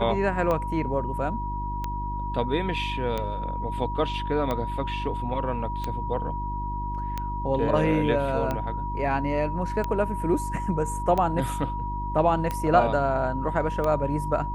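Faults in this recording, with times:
hum 50 Hz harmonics 7 -32 dBFS
tick 45 rpm -15 dBFS
tone 960 Hz -31 dBFS

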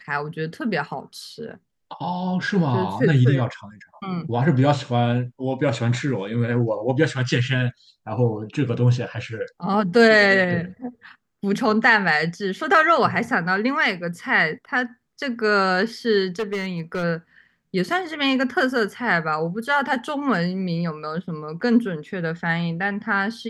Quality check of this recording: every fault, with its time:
16.39–17.04 clipped -21 dBFS

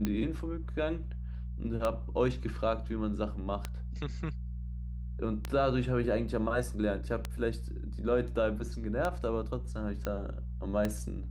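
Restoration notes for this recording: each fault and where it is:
hum 60 Hz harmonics 3 -38 dBFS
tick 33 1/3 rpm -17 dBFS
10.05 pop -21 dBFS

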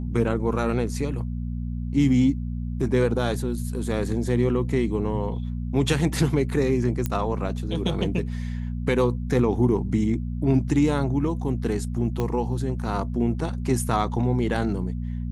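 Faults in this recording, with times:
hum 60 Hz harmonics 4 -29 dBFS
7.06 pop -12 dBFS
12.2 pop -14 dBFS

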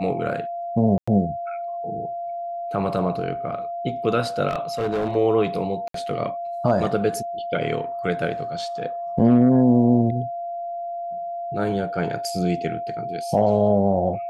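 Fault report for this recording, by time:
tone 690 Hz -27 dBFS
0.98–1.07 gap 95 ms
4.49–5.16 clipped -19.5 dBFS
5.88–5.94 gap 63 ms

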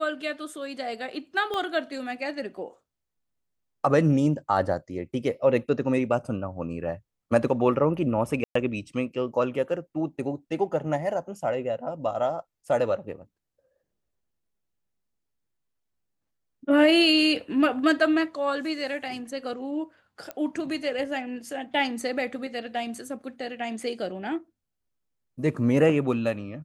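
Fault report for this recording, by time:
1.54 pop -18 dBFS
8.44–8.55 gap 0.114 s
20.31 pop -19 dBFS

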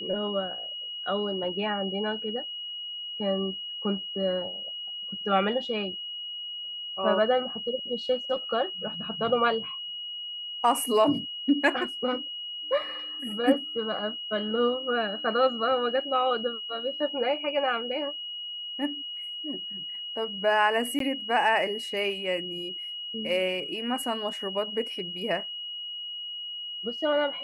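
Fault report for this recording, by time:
tone 2900 Hz -34 dBFS
20.99–21 gap 13 ms

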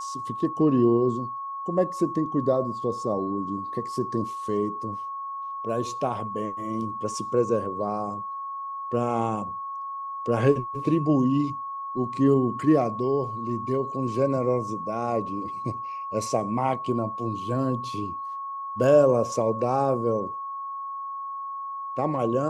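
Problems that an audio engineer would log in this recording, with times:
tone 1100 Hz -31 dBFS

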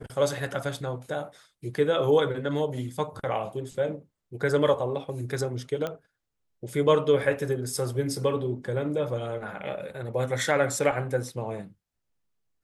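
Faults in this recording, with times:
5.87 pop -18 dBFS

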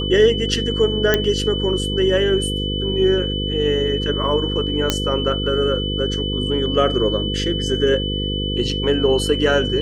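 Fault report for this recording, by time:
buzz 50 Hz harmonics 10 -24 dBFS
tone 3000 Hz -25 dBFS
1.14 pop -2 dBFS
4.9 pop -2 dBFS

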